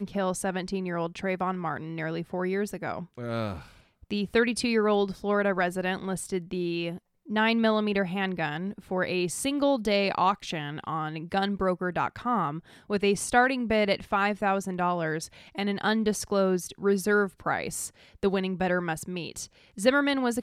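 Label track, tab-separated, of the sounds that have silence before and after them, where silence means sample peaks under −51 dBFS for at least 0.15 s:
4.030000	6.980000	sound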